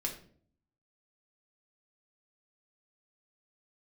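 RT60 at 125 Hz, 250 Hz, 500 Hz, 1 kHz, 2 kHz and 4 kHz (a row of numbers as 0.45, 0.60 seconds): 0.85, 0.80, 0.60, 0.45, 0.40, 0.35 seconds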